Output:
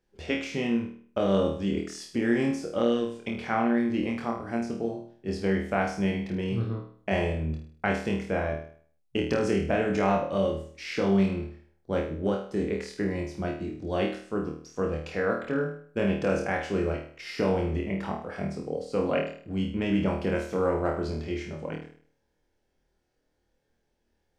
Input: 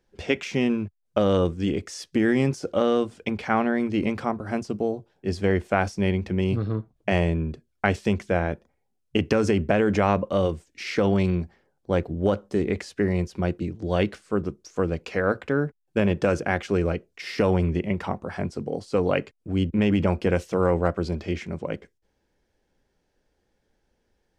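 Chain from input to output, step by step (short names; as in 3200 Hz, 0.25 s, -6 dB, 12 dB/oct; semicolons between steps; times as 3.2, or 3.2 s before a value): flutter echo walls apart 4.4 m, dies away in 0.51 s; gain -6.5 dB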